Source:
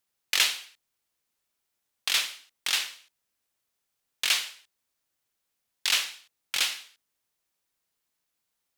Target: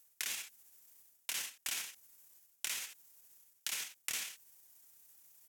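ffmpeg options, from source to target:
-filter_complex "[0:a]bandreject=f=1.4k:w=14,atempo=1.6,alimiter=limit=-14.5dB:level=0:latency=1:release=280,areverse,acompressor=threshold=-41dB:ratio=4,areverse,asetrate=38170,aresample=44100,atempo=1.15535,acrossover=split=300[a][b];[b]acompressor=threshold=-48dB:ratio=6[c];[a][c]amix=inputs=2:normalize=0,aexciter=amount=3.1:drive=6:freq=5.8k,volume=8.5dB"

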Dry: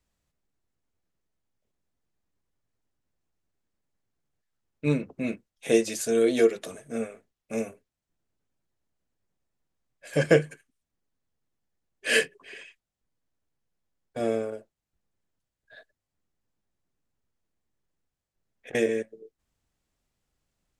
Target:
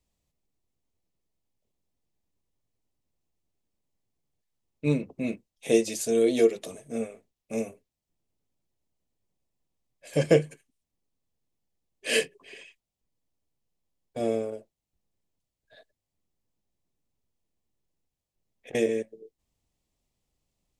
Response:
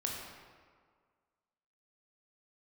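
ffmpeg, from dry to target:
-af "equalizer=f=1.5k:t=o:w=0.64:g=-11"

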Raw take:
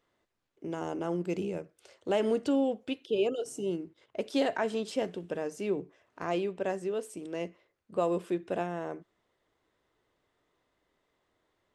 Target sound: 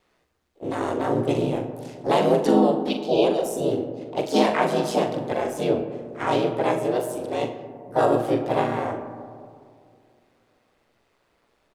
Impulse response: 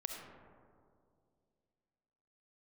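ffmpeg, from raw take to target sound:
-filter_complex "[0:a]aeval=exprs='val(0)*sin(2*PI*61*n/s)':c=same,asplit=3[a][b][c];[b]asetrate=55563,aresample=44100,atempo=0.793701,volume=-1dB[d];[c]asetrate=66075,aresample=44100,atempo=0.66742,volume=-8dB[e];[a][d][e]amix=inputs=3:normalize=0,asplit=2[f][g];[g]adelay=42,volume=-8.5dB[h];[f][h]amix=inputs=2:normalize=0,asplit=2[i][j];[1:a]atrim=start_sample=2205[k];[j][k]afir=irnorm=-1:irlink=0,volume=0dB[l];[i][l]amix=inputs=2:normalize=0,volume=3.5dB"

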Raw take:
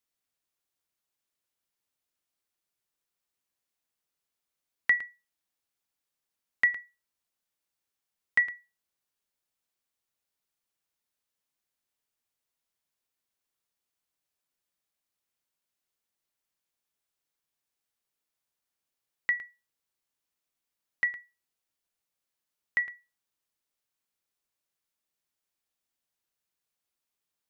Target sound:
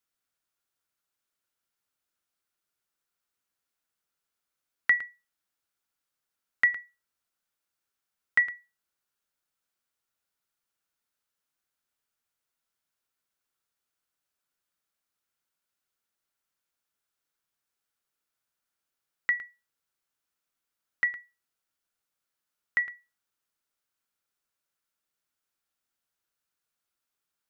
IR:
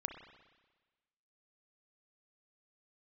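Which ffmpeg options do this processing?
-af "equalizer=f=1.4k:t=o:w=0.39:g=7.5"

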